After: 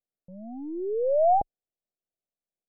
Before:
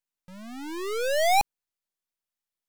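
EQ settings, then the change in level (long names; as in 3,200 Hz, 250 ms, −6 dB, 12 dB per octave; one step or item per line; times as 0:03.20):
Butterworth low-pass 760 Hz 96 dB per octave
spectral tilt +1.5 dB per octave
+4.5 dB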